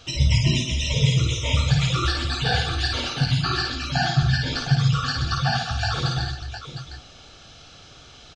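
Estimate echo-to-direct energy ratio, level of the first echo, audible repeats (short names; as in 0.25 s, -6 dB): -1.0 dB, -3.5 dB, 4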